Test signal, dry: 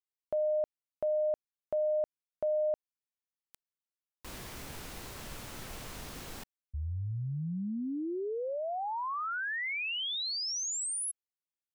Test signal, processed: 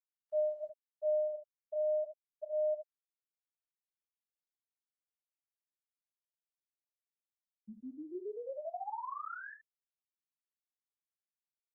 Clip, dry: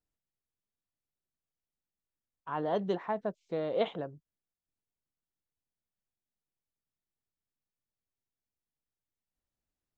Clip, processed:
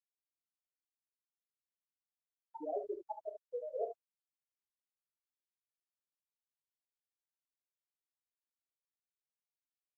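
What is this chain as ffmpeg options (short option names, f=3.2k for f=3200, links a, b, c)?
-filter_complex "[0:a]flanger=delay=19:depth=4.7:speed=0.33,acrossover=split=200 2200:gain=0.0891 1 0.178[a][b][c];[a][b][c]amix=inputs=3:normalize=0,aeval=exprs='(mod(13.3*val(0)+1,2)-1)/13.3':c=same,afftfilt=real='re*gte(hypot(re,im),0.141)':imag='im*gte(hypot(re,im),0.141)':win_size=1024:overlap=0.75,lowshelf=f=420:g=-5,aecho=1:1:31|41|71:0.224|0.158|0.355" -ar 48000 -c:a libopus -b:a 32k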